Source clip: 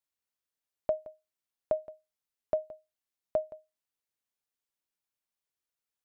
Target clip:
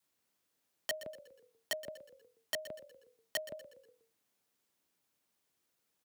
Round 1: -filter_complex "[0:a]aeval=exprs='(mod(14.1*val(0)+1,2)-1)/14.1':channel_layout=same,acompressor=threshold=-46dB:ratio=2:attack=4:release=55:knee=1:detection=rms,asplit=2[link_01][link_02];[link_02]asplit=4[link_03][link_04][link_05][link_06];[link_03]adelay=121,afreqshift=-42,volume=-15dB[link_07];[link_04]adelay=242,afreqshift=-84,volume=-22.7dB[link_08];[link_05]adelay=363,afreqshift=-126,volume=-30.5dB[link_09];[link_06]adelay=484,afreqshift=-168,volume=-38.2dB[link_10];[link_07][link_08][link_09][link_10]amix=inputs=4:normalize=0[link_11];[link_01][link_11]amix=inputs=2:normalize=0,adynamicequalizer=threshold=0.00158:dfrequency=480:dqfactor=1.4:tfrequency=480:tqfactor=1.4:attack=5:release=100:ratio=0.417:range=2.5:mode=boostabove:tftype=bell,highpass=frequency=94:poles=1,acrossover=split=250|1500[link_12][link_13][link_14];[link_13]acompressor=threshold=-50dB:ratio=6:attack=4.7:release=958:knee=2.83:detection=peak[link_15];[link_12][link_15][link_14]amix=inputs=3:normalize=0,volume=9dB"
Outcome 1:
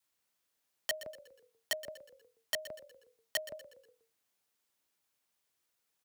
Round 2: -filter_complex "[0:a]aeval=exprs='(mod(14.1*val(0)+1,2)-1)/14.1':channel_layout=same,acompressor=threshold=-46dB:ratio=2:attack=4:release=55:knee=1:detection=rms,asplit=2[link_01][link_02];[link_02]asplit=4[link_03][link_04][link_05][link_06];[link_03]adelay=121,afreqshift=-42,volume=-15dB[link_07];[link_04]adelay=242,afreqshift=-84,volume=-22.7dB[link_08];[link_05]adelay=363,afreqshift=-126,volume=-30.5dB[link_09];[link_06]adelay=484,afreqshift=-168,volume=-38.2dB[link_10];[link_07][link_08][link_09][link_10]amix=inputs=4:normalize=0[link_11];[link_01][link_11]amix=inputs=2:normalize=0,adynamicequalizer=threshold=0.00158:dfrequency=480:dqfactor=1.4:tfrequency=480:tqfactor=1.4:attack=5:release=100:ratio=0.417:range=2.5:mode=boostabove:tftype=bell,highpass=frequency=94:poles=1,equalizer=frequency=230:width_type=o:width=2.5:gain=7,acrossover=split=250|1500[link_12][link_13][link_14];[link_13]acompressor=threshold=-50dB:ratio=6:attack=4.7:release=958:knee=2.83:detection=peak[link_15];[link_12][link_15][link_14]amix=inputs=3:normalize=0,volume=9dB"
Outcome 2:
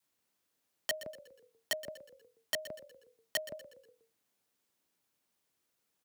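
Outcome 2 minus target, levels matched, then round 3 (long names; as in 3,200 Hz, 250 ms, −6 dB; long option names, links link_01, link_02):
downward compressor: peak gain reduction −3 dB
-filter_complex "[0:a]aeval=exprs='(mod(14.1*val(0)+1,2)-1)/14.1':channel_layout=same,acompressor=threshold=-52dB:ratio=2:attack=4:release=55:knee=1:detection=rms,asplit=2[link_01][link_02];[link_02]asplit=4[link_03][link_04][link_05][link_06];[link_03]adelay=121,afreqshift=-42,volume=-15dB[link_07];[link_04]adelay=242,afreqshift=-84,volume=-22.7dB[link_08];[link_05]adelay=363,afreqshift=-126,volume=-30.5dB[link_09];[link_06]adelay=484,afreqshift=-168,volume=-38.2dB[link_10];[link_07][link_08][link_09][link_10]amix=inputs=4:normalize=0[link_11];[link_01][link_11]amix=inputs=2:normalize=0,adynamicequalizer=threshold=0.00158:dfrequency=480:dqfactor=1.4:tfrequency=480:tqfactor=1.4:attack=5:release=100:ratio=0.417:range=2.5:mode=boostabove:tftype=bell,highpass=frequency=94:poles=1,equalizer=frequency=230:width_type=o:width=2.5:gain=7,acrossover=split=250|1500[link_12][link_13][link_14];[link_13]acompressor=threshold=-50dB:ratio=6:attack=4.7:release=958:knee=2.83:detection=peak[link_15];[link_12][link_15][link_14]amix=inputs=3:normalize=0,volume=9dB"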